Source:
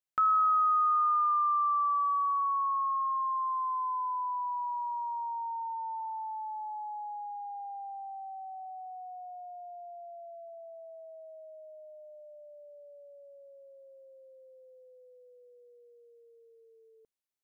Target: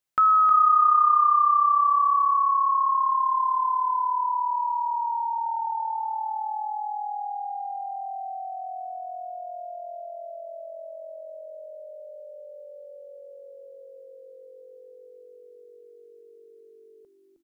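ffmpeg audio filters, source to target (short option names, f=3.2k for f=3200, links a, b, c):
-filter_complex "[0:a]asplit=5[a][b][c][d][e];[b]adelay=312,afreqshift=-57,volume=-7dB[f];[c]adelay=624,afreqshift=-114,volume=-16.9dB[g];[d]adelay=936,afreqshift=-171,volume=-26.8dB[h];[e]adelay=1248,afreqshift=-228,volume=-36.7dB[i];[a][f][g][h][i]amix=inputs=5:normalize=0,volume=7dB"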